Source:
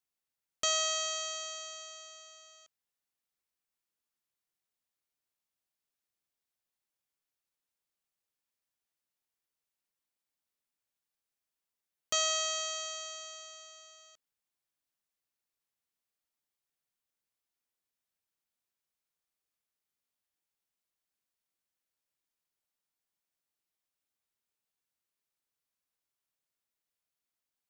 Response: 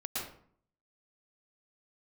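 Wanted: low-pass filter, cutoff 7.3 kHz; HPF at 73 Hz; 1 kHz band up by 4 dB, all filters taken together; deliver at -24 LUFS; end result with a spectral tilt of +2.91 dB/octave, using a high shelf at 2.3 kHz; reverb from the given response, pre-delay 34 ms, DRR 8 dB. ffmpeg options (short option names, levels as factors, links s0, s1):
-filter_complex "[0:a]highpass=73,lowpass=7300,equalizer=f=1000:t=o:g=7,highshelf=f=2300:g=-3,asplit=2[s0][s1];[1:a]atrim=start_sample=2205,adelay=34[s2];[s1][s2]afir=irnorm=-1:irlink=0,volume=0.282[s3];[s0][s3]amix=inputs=2:normalize=0,volume=3.35"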